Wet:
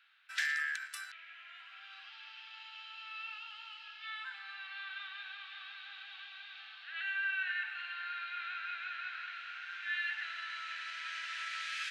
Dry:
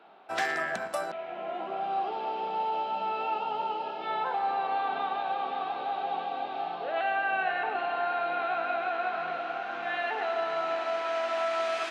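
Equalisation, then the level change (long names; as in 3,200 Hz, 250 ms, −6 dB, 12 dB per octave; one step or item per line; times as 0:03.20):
elliptic high-pass filter 1,600 Hz, stop band 80 dB
−1.0 dB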